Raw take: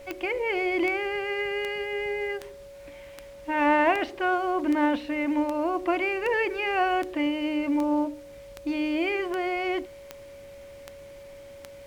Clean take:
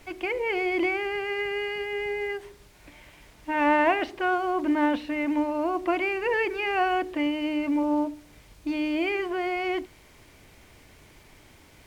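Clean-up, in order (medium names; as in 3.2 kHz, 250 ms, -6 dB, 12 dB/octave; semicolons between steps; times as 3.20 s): de-click; band-stop 560 Hz, Q 30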